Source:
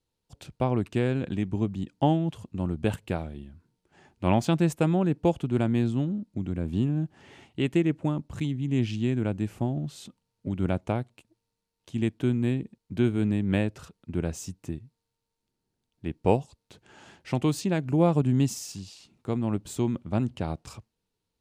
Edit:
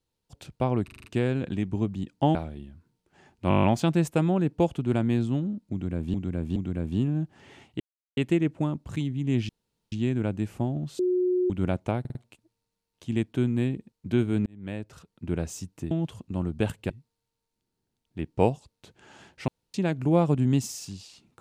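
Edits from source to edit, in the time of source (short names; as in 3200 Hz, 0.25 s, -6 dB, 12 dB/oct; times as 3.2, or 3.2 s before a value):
0.84 stutter 0.04 s, 6 plays
2.15–3.14 move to 14.77
4.28 stutter 0.02 s, 8 plays
6.37–6.79 loop, 3 plays
7.61 insert silence 0.37 s
8.93 insert room tone 0.43 s
10–10.51 bleep 363 Hz -21 dBFS
11.01 stutter 0.05 s, 4 plays
13.32–14.13 fade in
17.35–17.61 room tone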